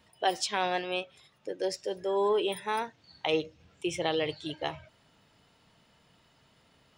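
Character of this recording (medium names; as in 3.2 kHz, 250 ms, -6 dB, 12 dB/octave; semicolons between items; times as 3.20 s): noise floor -65 dBFS; spectral tilt -3.5 dB/octave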